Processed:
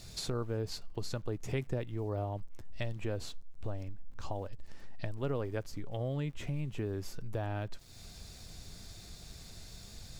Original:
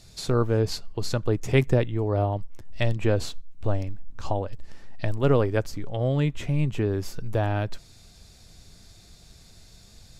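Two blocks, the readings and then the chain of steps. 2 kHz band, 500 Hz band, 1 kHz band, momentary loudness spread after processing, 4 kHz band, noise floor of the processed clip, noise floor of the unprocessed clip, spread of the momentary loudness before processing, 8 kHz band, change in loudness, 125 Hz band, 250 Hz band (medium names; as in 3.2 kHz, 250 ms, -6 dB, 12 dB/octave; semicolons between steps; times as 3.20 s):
-12.5 dB, -12.5 dB, -12.0 dB, 14 LU, -8.0 dB, -51 dBFS, -52 dBFS, 11 LU, -6.5 dB, -13.0 dB, -12.0 dB, -12.5 dB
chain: compression 2.5:1, threshold -41 dBFS, peak gain reduction 17.5 dB; small samples zeroed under -59 dBFS; trim +1.5 dB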